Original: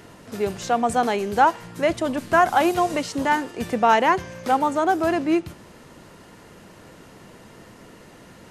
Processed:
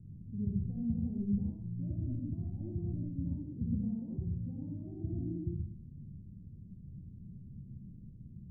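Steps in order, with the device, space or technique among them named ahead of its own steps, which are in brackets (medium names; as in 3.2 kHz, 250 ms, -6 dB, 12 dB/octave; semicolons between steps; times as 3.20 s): club heard from the street (peak limiter -14 dBFS, peak gain reduction 9 dB; low-pass 160 Hz 24 dB/octave; reverberation RT60 0.60 s, pre-delay 54 ms, DRR -2 dB); trim +2 dB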